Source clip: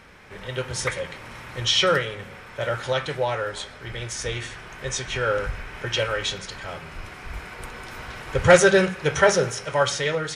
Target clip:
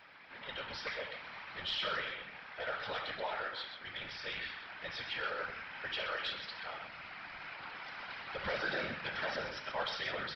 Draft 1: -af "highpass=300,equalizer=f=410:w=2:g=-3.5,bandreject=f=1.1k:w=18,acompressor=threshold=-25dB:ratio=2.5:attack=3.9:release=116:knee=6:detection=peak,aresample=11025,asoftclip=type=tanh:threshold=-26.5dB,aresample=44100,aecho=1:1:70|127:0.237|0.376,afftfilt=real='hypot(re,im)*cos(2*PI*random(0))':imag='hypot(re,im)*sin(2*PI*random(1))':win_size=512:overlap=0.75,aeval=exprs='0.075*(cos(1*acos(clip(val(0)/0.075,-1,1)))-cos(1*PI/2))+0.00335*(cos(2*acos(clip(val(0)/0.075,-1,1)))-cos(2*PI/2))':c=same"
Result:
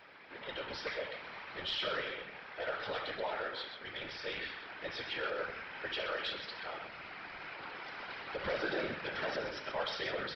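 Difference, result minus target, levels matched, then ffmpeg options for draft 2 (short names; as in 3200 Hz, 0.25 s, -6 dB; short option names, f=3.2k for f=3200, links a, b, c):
500 Hz band +3.5 dB
-af "highpass=300,equalizer=f=410:w=2:g=-15,bandreject=f=1.1k:w=18,acompressor=threshold=-25dB:ratio=2.5:attack=3.9:release=116:knee=6:detection=peak,aresample=11025,asoftclip=type=tanh:threshold=-26.5dB,aresample=44100,aecho=1:1:70|127:0.237|0.376,afftfilt=real='hypot(re,im)*cos(2*PI*random(0))':imag='hypot(re,im)*sin(2*PI*random(1))':win_size=512:overlap=0.75,aeval=exprs='0.075*(cos(1*acos(clip(val(0)/0.075,-1,1)))-cos(1*PI/2))+0.00335*(cos(2*acos(clip(val(0)/0.075,-1,1)))-cos(2*PI/2))':c=same"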